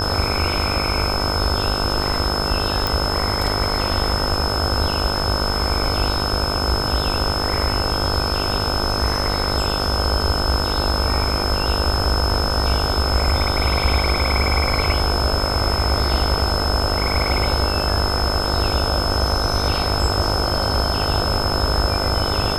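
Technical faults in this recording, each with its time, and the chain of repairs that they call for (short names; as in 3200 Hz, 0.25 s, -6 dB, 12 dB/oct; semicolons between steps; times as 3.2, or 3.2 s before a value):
buzz 50 Hz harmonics 31 -25 dBFS
tone 5200 Hz -24 dBFS
2.87 pop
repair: de-click; de-hum 50 Hz, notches 31; notch 5200 Hz, Q 30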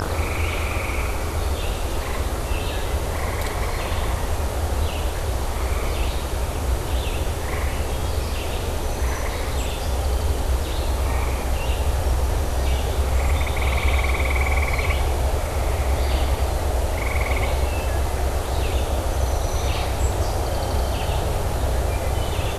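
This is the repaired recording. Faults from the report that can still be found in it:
none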